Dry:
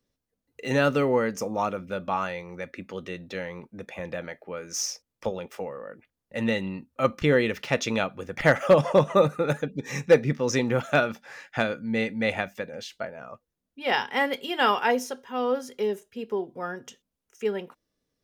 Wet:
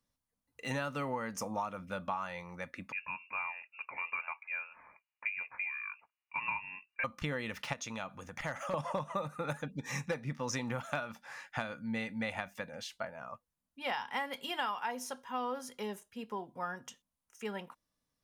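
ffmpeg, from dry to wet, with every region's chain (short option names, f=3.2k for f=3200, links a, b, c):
-filter_complex "[0:a]asettb=1/sr,asplit=3[a][b][c];[a]atrim=end=2.924[d];[b]atrim=start=2.92:end=7.04,asetpts=PTS-STARTPTS,afade=t=in:d=0.004:c=qsin,afade=t=out:st=4.116:d=0.004:c=qsin,lowshelf=f=340:t=q:w=1.5:g=-8.5,lowpass=f=2.5k:t=q:w=0.5098,lowpass=f=2.5k:t=q:w=0.6013,lowpass=f=2.5k:t=q:w=0.9,lowpass=f=2.5k:t=q:w=2.563,afreqshift=-2900[e];[c]atrim=start=7.036[f];[d][e]acrossfade=d=0.004:c1=hsin:c2=qsin[g];[g][f]acrossfade=d=0.004:c1=qsin:c2=hsin,asettb=1/sr,asplit=3[h][i][j];[h]atrim=end=7.734[k];[i]atrim=start=7.73:end=8.74,asetpts=PTS-STARTPTS,afade=t=in:d=0.004:c=qsin,afade=t=out:st=1.006:d=0.004:c=qsin,equalizer=f=6.5k:t=o:w=0.21:g=7.5,acompressor=threshold=-37dB:ratio=2:attack=3.2:release=140:knee=1:detection=peak[l];[j]atrim=start=8.736[m];[k][l]acrossfade=d=0.004:c1=hsin:c2=qsin[n];[n][m]acrossfade=d=0.004:c1=qsin:c2=hsin,equalizer=f=400:t=o:w=0.67:g=-11,equalizer=f=1k:t=o:w=0.67:g=7,equalizer=f=10k:t=o:w=0.67:g=6,acompressor=threshold=-27dB:ratio=12,volume=-5dB"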